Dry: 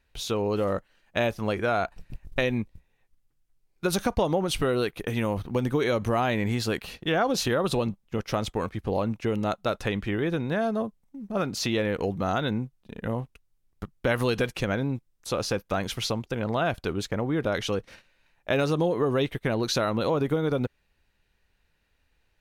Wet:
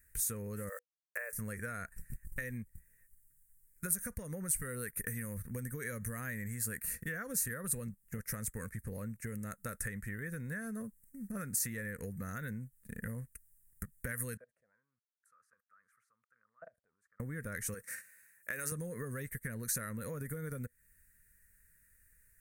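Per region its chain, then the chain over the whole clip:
0.69–1.33 s: brick-wall FIR band-pass 420–2800 Hz + distance through air 410 m + small samples zeroed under -49 dBFS
14.37–17.20 s: level held to a coarse grid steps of 24 dB + auto-wah 640–1600 Hz, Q 10, down, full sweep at -33.5 dBFS
17.74–18.72 s: high-pass 640 Hz 6 dB/octave + transient shaper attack -1 dB, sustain +5 dB
whole clip: FFT filter 110 Hz 0 dB, 230 Hz -3 dB, 340 Hz -17 dB, 490 Hz -7 dB, 780 Hz -25 dB, 1.8 kHz +5 dB, 3.2 kHz -28 dB, 5.6 kHz -9 dB, 8.5 kHz +11 dB; compression 6:1, threshold -39 dBFS; treble shelf 3.7 kHz +9.5 dB

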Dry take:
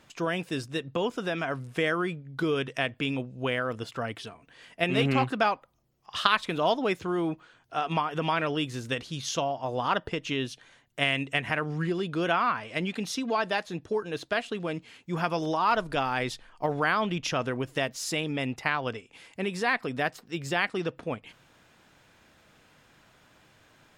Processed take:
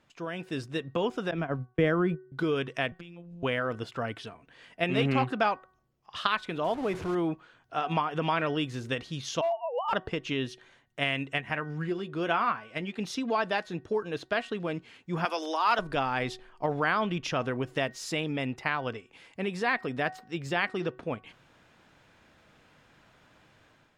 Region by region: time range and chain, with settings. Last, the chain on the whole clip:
1.31–2.32 s: tilt EQ -3 dB/octave + gate -29 dBFS, range -28 dB + three bands expanded up and down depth 40%
2.92–3.43 s: bass shelf 130 Hz +9.5 dB + compression 12:1, threshold -38 dBFS + robot voice 172 Hz
6.64–7.15 s: one-bit delta coder 64 kbps, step -29 dBFS + treble shelf 2.1 kHz -11 dB
9.41–9.93 s: formants replaced by sine waves + hard clipper -23 dBFS
11.38–12.99 s: band-stop 4.1 kHz, Q 27 + doubling 14 ms -12 dB + upward expansion, over -38 dBFS
15.25–15.79 s: steep high-pass 200 Hz 96 dB/octave + tilt EQ +3 dB/octave
whole clip: de-hum 374.1 Hz, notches 5; level rider gain up to 8 dB; treble shelf 6.1 kHz -10 dB; trim -8 dB

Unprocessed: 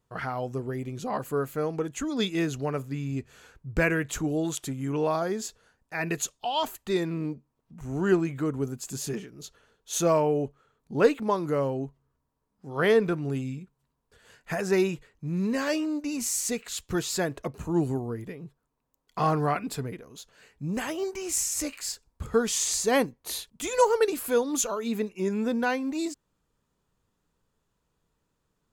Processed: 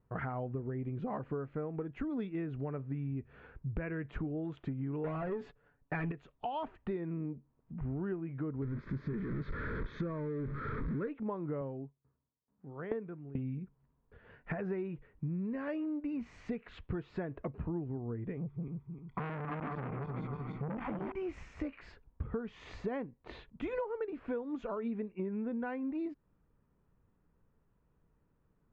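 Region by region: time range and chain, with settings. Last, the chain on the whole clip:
5.04–6.12 s: waveshaping leveller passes 3 + comb 7 ms, depth 58%
8.62–11.08 s: jump at every zero crossing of -26 dBFS + low-pass 4.9 kHz + static phaser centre 2.8 kHz, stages 6
11.61–13.38 s: high-pass 85 Hz + sawtooth tremolo in dB decaying 2.3 Hz, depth 23 dB
18.37–21.12 s: backward echo that repeats 154 ms, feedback 61%, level -1.5 dB + comb 0.9 ms, depth 68% + transformer saturation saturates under 2.3 kHz
whole clip: low-pass 2.3 kHz 24 dB/octave; bass shelf 410 Hz +8.5 dB; compression 12:1, threshold -31 dBFS; trim -3 dB

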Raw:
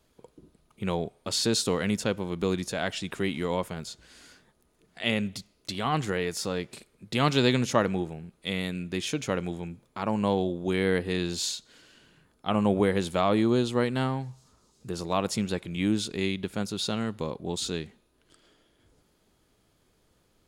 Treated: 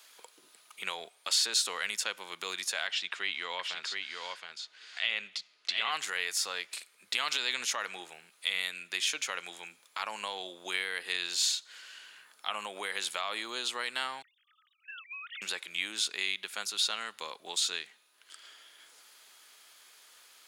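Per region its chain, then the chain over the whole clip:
2.87–5.91 s: Chebyshev low-pass 4.1 kHz + delay 720 ms -6.5 dB
14.22–15.42 s: formants replaced by sine waves + steep high-pass 1.3 kHz 96 dB/octave + compression, threshold -50 dBFS
whole clip: peak limiter -17.5 dBFS; high-pass 1.5 kHz 12 dB/octave; three bands compressed up and down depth 40%; trim +4.5 dB

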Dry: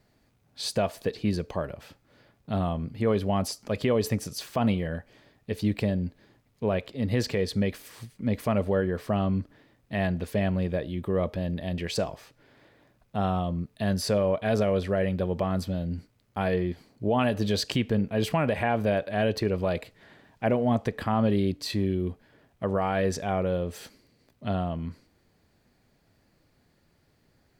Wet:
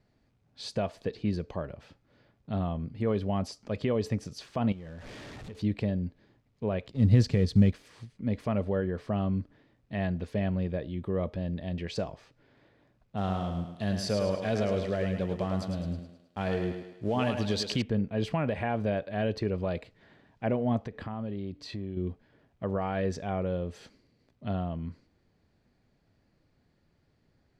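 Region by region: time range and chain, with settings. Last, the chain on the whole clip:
4.72–5.62 s: jump at every zero crossing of -34.5 dBFS + compression 8:1, threshold -36 dBFS
6.87–7.74 s: companding laws mixed up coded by A + tone controls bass +12 dB, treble +8 dB
13.17–17.82 s: companding laws mixed up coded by A + treble shelf 3.5 kHz +9 dB + thinning echo 106 ms, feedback 50%, high-pass 220 Hz, level -6 dB
20.79–21.97 s: treble shelf 5.6 kHz -5.5 dB + compression 3:1, threshold -31 dBFS
whole clip: low-pass 6 kHz 12 dB/octave; bass shelf 420 Hz +4.5 dB; trim -6.5 dB

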